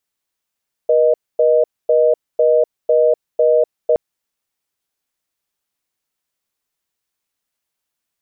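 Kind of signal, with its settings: call progress tone reorder tone, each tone -12.5 dBFS 3.07 s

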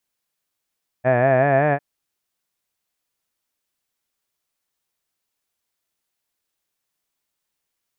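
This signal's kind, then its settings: formant-synthesis vowel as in had, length 0.75 s, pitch 122 Hz, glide +3.5 st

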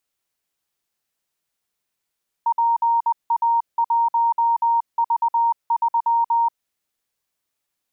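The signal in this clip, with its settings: Morse "PA1V3" 20 wpm 930 Hz -15 dBFS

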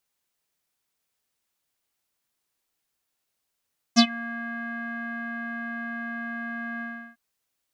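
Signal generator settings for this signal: synth note square A#3 12 dB/oct, low-pass 1700 Hz, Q 9.6, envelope 2 oct, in 0.14 s, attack 29 ms, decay 0.07 s, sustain -23 dB, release 0.35 s, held 2.85 s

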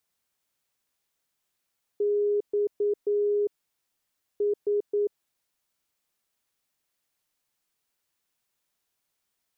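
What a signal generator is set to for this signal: Morse "X S" 9 wpm 412 Hz -21.5 dBFS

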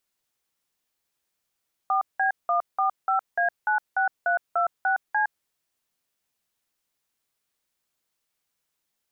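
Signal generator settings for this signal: DTMF "4B145A96326C", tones 0.113 s, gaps 0.182 s, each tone -22.5 dBFS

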